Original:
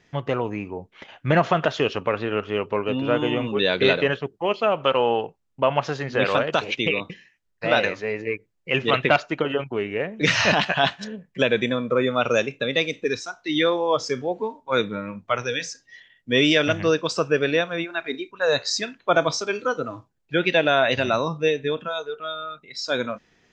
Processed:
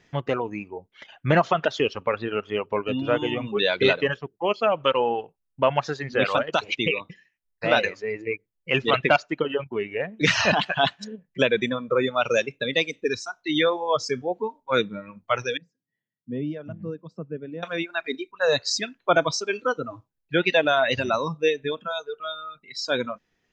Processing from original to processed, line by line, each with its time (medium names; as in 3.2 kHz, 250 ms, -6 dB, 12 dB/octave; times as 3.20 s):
15.57–17.63 s: band-pass filter 180 Hz, Q 2.1
whole clip: reverb removal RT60 1.8 s